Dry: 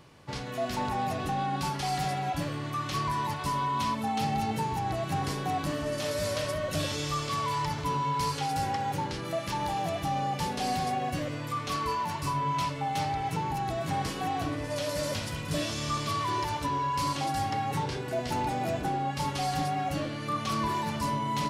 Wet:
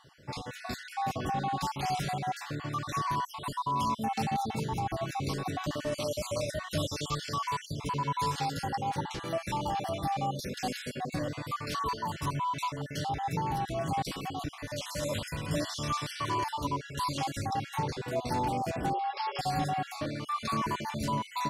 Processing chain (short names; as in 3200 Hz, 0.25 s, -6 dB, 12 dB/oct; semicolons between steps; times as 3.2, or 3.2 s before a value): random spectral dropouts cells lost 42%; 14.11–15.03 dynamic EQ 560 Hz, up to -5 dB, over -44 dBFS, Q 0.7; 18.93–19.39 brick-wall FIR band-pass 350–5500 Hz